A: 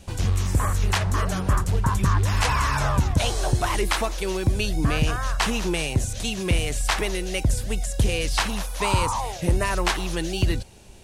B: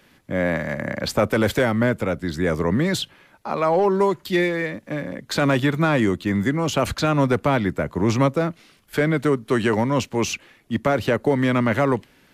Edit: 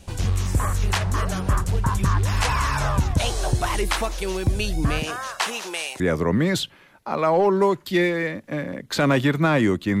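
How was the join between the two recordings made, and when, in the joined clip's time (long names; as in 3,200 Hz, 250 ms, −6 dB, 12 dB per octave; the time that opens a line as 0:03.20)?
A
0:04.99–0:06.00: high-pass filter 220 Hz → 890 Hz
0:06.00: continue with B from 0:02.39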